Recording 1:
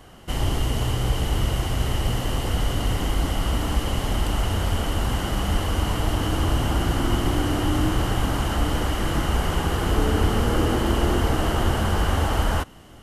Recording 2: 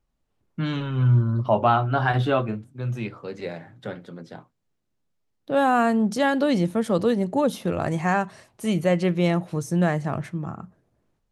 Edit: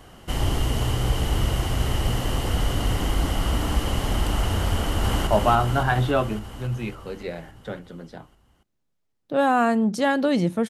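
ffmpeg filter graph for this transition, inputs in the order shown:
-filter_complex "[0:a]apad=whole_dur=10.69,atrim=end=10.69,atrim=end=5.272[a];[1:a]atrim=start=1.448:end=6.87[b];[a][b]acrossfade=d=0.004:c1=hsin:c2=hsin,asplit=2[c][d];[d]afade=t=in:st=4.75:d=0.01,afade=t=out:st=5.27:d=0.01,aecho=0:1:280|560|840|1120|1400|1680|1960|2240|2520|2800|3080|3360:0.668344|0.467841|0.327489|0.229242|0.160469|0.112329|0.07863|0.055041|0.0385287|0.0269701|0.0188791|0.0132153[e];[c][e]amix=inputs=2:normalize=0"

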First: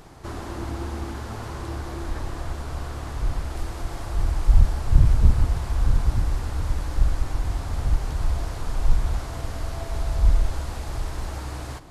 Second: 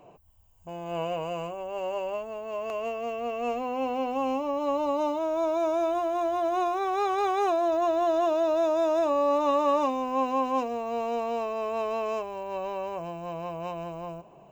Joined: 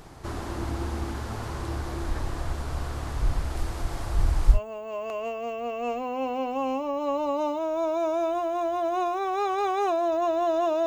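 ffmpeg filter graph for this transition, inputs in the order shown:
-filter_complex "[0:a]apad=whole_dur=10.86,atrim=end=10.86,atrim=end=4.6,asetpts=PTS-STARTPTS[a];[1:a]atrim=start=2.1:end=8.46,asetpts=PTS-STARTPTS[b];[a][b]acrossfade=d=0.1:c1=tri:c2=tri"

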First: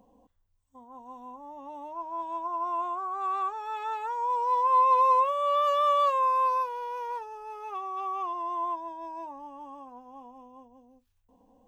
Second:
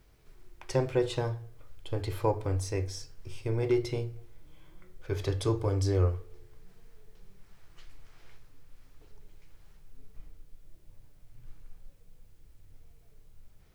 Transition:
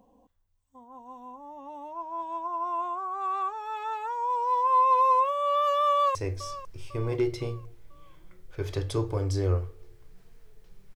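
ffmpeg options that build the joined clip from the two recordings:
-filter_complex "[0:a]apad=whole_dur=10.95,atrim=end=10.95,atrim=end=6.152[a];[1:a]atrim=start=2.658:end=7.46[b];[a][b]acrossfade=d=0.004:c1=hsin:c2=hsin,asplit=2[c][d];[d]afade=t=in:st=5.9:d=0.01,afade=t=out:st=6.15:d=0.01,aecho=0:1:500|1000|1500|2000:0.177828|0.0800226|0.0360102|0.0162046[e];[c][e]amix=inputs=2:normalize=0"

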